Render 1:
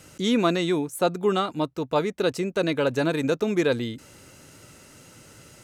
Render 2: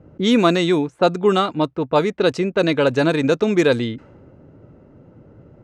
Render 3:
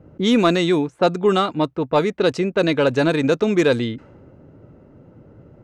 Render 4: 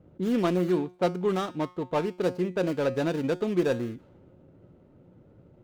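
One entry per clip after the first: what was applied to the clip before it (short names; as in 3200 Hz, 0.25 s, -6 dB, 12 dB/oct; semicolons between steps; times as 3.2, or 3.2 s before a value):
LPF 10000 Hz 12 dB/oct; low-pass opened by the level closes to 530 Hz, open at -18 dBFS; gain +6.5 dB
soft clip -4.5 dBFS, distortion -26 dB
median filter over 25 samples; resonator 180 Hz, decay 0.38 s, harmonics all, mix 60%; gain -2 dB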